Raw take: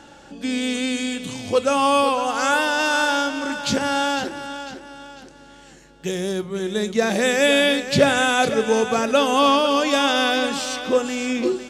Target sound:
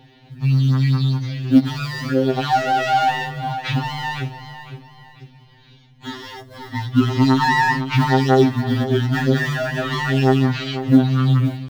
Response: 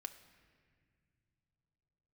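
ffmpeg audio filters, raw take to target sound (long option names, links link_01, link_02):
-filter_complex "[0:a]highpass=63,acrossover=split=3000[link_01][link_02];[link_01]adynamicsmooth=sensitivity=6.5:basefreq=830[link_03];[link_03][link_02]amix=inputs=2:normalize=0,asetrate=23361,aresample=44100,atempo=1.88775,acrusher=bits=9:mode=log:mix=0:aa=0.000001,afftfilt=real='re*2.45*eq(mod(b,6),0)':imag='im*2.45*eq(mod(b,6),0)':win_size=2048:overlap=0.75,volume=4dB"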